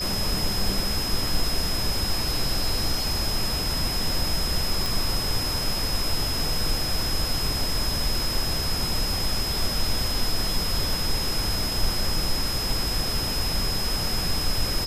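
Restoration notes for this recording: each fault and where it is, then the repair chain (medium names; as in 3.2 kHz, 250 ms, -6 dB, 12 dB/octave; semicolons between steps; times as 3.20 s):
whine 5.1 kHz -28 dBFS
4.86 s: pop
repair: de-click; band-stop 5.1 kHz, Q 30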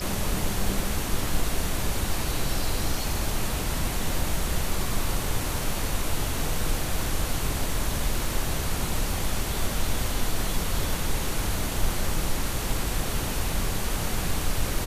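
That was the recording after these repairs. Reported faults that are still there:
nothing left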